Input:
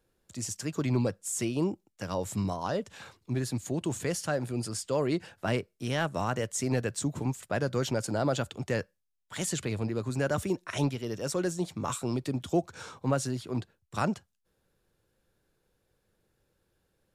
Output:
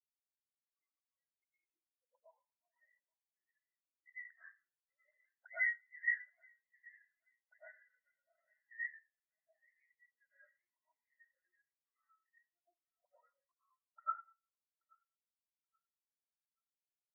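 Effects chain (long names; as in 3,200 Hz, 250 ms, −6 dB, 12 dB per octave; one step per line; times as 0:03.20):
0:03.99–0:04.46: sub-harmonics by changed cycles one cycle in 2, muted
in parallel at −3 dB: speech leveller within 4 dB 0.5 s
on the sum: gate pattern "xxxxx.xxxxxx." 91 BPM −12 dB
envelope filter 320–2,000 Hz, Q 13, up, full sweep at −24 dBFS
on a send: feedback echo with a high-pass in the loop 829 ms, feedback 69%, high-pass 420 Hz, level −8 dB
on the sum: comb and all-pass reverb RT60 1.2 s, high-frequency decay 0.65×, pre-delay 65 ms, DRR −6 dB
every bin expanded away from the loudest bin 4 to 1
level +1 dB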